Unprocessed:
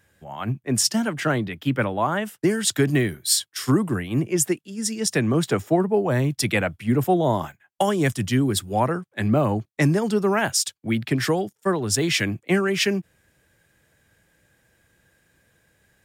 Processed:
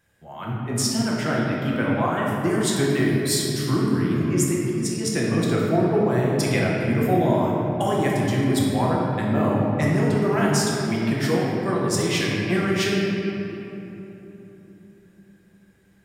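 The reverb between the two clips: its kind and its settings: shoebox room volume 200 m³, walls hard, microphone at 0.8 m; gain -6 dB

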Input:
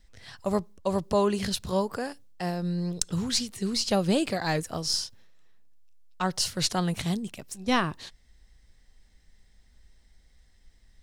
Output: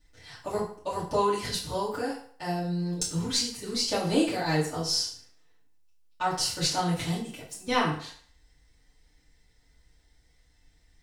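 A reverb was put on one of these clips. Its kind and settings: FDN reverb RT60 0.53 s, low-frequency decay 0.75×, high-frequency decay 0.85×, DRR -9 dB; gain -9 dB

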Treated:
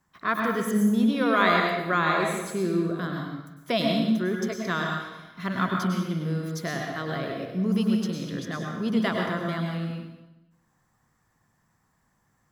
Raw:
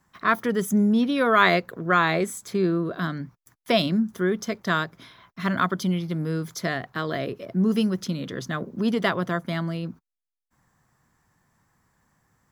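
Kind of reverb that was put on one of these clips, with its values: plate-style reverb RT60 1 s, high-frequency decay 0.9×, pre-delay 90 ms, DRR 0.5 dB; gain -5 dB

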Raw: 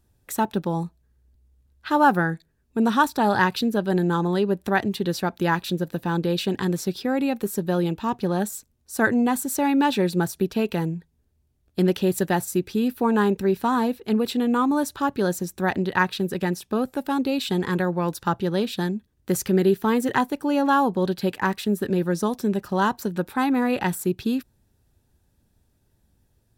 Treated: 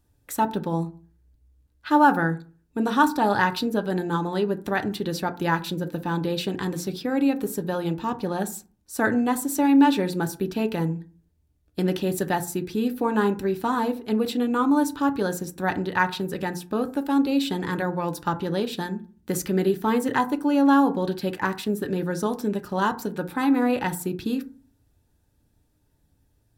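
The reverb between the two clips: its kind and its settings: FDN reverb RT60 0.39 s, low-frequency decay 1.3×, high-frequency decay 0.4×, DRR 7.5 dB; gain -2 dB

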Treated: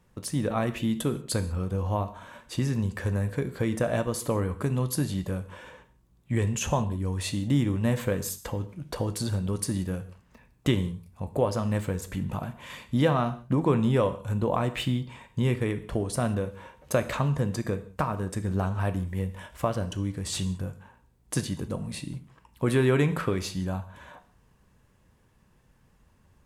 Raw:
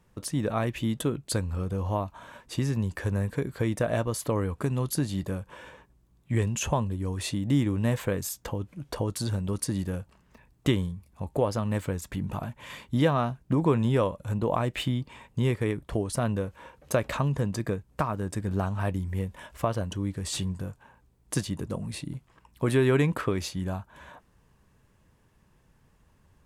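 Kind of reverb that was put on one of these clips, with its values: non-linear reverb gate 0.21 s falling, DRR 9.5 dB

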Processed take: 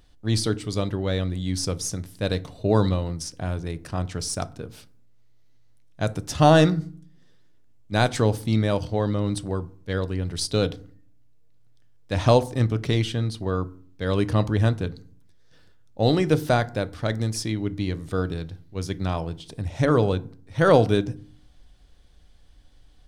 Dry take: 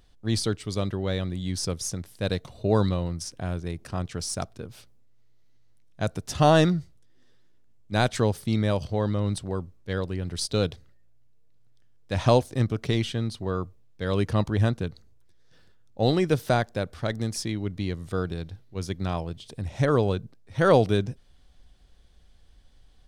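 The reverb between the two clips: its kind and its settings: FDN reverb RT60 0.47 s, low-frequency decay 1.55×, high-frequency decay 0.55×, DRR 13 dB; gain +2 dB

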